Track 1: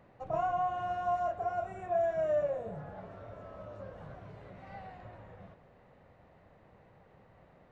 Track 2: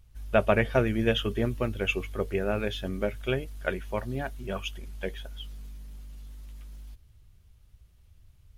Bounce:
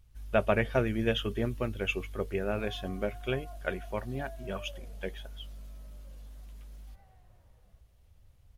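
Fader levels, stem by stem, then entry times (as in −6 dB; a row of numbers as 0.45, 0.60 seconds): −18.5, −3.5 decibels; 2.25, 0.00 seconds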